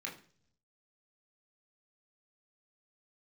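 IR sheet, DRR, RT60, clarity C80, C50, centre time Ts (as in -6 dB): -2.5 dB, 0.50 s, 15.0 dB, 10.5 dB, 22 ms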